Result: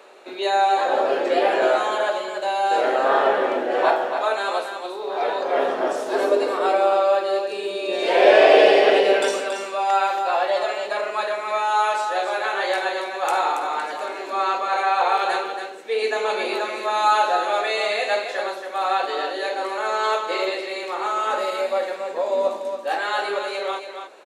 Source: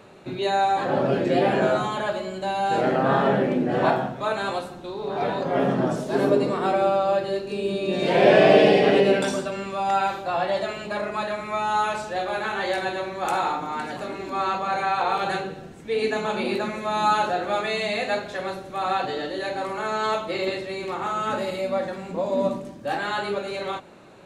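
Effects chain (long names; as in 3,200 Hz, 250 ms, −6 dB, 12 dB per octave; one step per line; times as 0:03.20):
high-pass filter 400 Hz 24 dB per octave
on a send: single-tap delay 279 ms −7.5 dB
on the sum: level +3 dB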